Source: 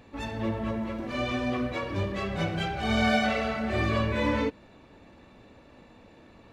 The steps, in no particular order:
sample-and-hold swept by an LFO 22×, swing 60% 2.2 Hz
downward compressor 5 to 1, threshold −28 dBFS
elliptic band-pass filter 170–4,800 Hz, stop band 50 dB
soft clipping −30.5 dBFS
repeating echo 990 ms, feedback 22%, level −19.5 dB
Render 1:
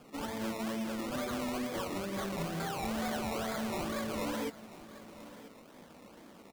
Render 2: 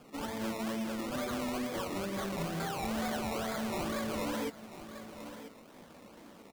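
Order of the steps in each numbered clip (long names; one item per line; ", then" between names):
downward compressor, then elliptic band-pass filter, then sample-and-hold swept by an LFO, then repeating echo, then soft clipping
elliptic band-pass filter, then sample-and-hold swept by an LFO, then repeating echo, then downward compressor, then soft clipping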